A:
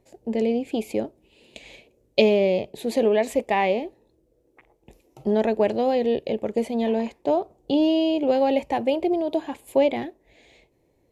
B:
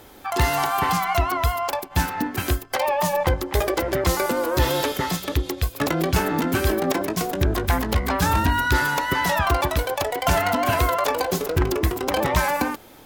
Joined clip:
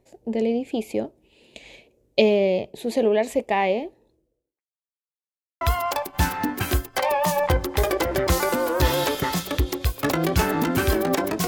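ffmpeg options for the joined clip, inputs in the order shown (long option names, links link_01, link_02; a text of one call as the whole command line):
ffmpeg -i cue0.wav -i cue1.wav -filter_complex "[0:a]apad=whole_dur=11.47,atrim=end=11.47,asplit=2[link_01][link_02];[link_01]atrim=end=4.64,asetpts=PTS-STARTPTS,afade=type=out:start_time=4.08:duration=0.56:curve=qua[link_03];[link_02]atrim=start=4.64:end=5.61,asetpts=PTS-STARTPTS,volume=0[link_04];[1:a]atrim=start=1.38:end=7.24,asetpts=PTS-STARTPTS,afade=type=in:duration=0.004:curve=hsin[link_05];[link_03][link_04][link_05]concat=n=3:v=0:a=1" out.wav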